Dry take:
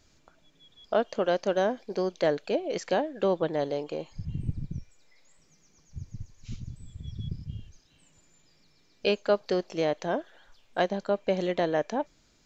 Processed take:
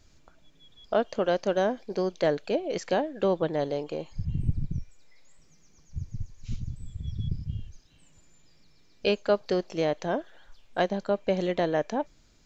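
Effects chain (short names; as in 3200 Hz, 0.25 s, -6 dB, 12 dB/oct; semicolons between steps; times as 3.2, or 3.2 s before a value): low shelf 110 Hz +8 dB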